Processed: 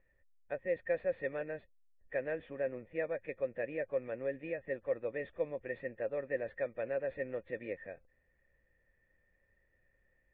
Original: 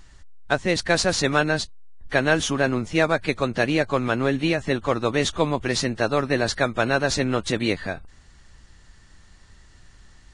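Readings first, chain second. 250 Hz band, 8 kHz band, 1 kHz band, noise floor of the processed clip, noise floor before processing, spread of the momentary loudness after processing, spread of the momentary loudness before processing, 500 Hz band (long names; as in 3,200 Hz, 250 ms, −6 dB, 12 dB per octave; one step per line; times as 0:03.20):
−23.0 dB, below −40 dB, −25.0 dB, −75 dBFS, −51 dBFS, 6 LU, 4 LU, −11.5 dB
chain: formant resonators in series e
level −6 dB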